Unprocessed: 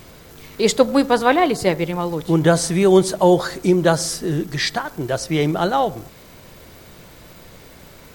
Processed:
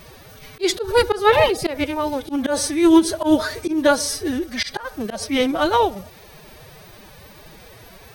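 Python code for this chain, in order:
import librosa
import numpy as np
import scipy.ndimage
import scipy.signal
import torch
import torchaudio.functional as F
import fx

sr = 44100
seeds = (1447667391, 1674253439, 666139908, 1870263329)

y = fx.peak_eq(x, sr, hz=160.0, db=-11.5, octaves=0.68)
y = fx.notch(y, sr, hz=7300.0, q=5.2)
y = fx.pitch_keep_formants(y, sr, semitones=9.5)
y = fx.auto_swell(y, sr, attack_ms=114.0)
y = y * librosa.db_to_amplitude(2.0)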